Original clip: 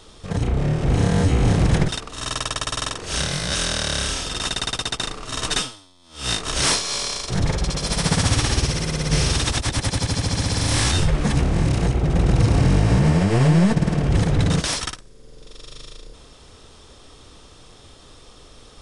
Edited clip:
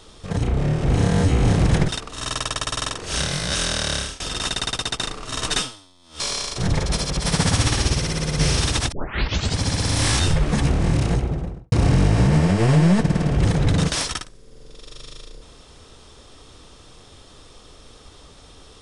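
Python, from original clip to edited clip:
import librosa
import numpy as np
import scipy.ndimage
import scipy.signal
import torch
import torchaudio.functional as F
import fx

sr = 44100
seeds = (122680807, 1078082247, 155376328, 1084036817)

y = fx.studio_fade_out(x, sr, start_s=11.75, length_s=0.69)
y = fx.edit(y, sr, fx.fade_out_to(start_s=3.94, length_s=0.26, floor_db=-23.5),
    fx.cut(start_s=6.2, length_s=0.72),
    fx.reverse_span(start_s=7.65, length_s=0.29),
    fx.tape_start(start_s=9.64, length_s=0.66), tone=tone)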